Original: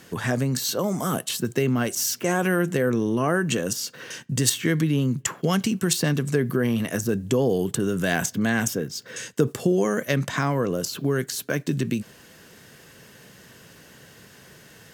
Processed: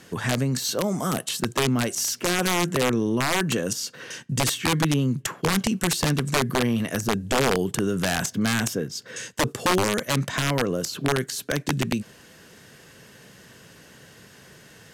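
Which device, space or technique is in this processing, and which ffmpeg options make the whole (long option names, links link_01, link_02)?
overflowing digital effects unit: -af "aeval=exprs='(mod(5.01*val(0)+1,2)-1)/5.01':channel_layout=same,lowpass=12000"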